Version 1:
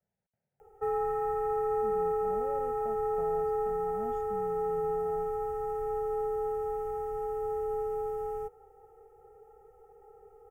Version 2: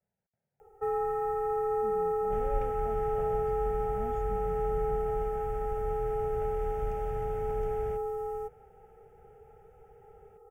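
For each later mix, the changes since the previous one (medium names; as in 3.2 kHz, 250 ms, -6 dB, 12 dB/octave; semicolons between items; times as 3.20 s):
second sound: unmuted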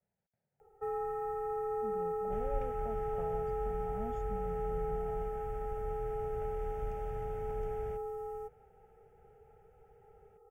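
first sound -6.0 dB; second sound -4.5 dB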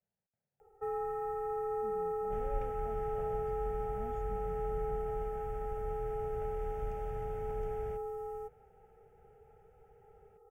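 speech -5.5 dB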